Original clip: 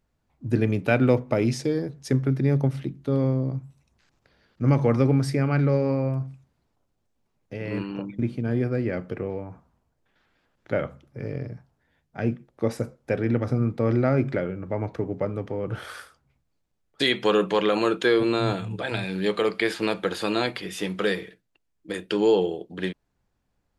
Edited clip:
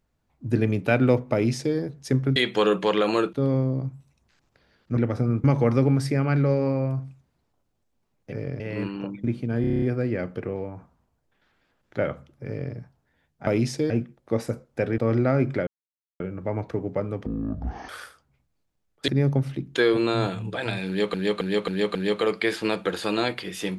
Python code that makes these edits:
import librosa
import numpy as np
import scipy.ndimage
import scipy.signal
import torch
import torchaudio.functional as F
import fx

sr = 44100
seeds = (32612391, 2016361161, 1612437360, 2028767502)

y = fx.edit(x, sr, fx.duplicate(start_s=1.33, length_s=0.43, to_s=12.21),
    fx.swap(start_s=2.36, length_s=0.67, other_s=17.04, other_length_s=0.97),
    fx.stutter(start_s=8.56, slice_s=0.03, count=8),
    fx.duplicate(start_s=11.2, length_s=0.28, to_s=7.55),
    fx.move(start_s=13.29, length_s=0.47, to_s=4.67),
    fx.insert_silence(at_s=14.45, length_s=0.53),
    fx.speed_span(start_s=15.51, length_s=0.34, speed=0.54),
    fx.repeat(start_s=19.13, length_s=0.27, count=5), tone=tone)